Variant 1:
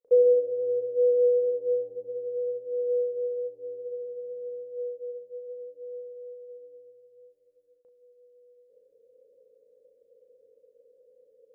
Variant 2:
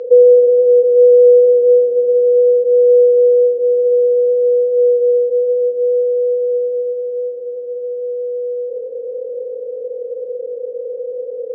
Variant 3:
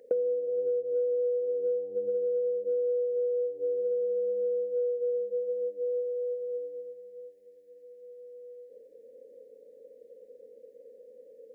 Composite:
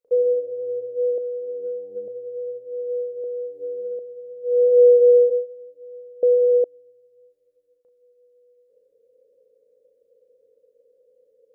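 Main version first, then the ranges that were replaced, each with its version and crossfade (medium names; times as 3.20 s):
1
1.18–2.08 s: from 3
3.24–3.99 s: from 3
4.55–5.35 s: from 2, crossfade 0.24 s
6.23–6.64 s: from 2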